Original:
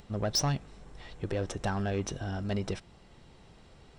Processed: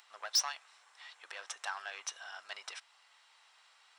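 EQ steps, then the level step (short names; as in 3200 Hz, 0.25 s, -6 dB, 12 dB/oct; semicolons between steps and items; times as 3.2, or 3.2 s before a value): HPF 1000 Hz 24 dB/oct; 0.0 dB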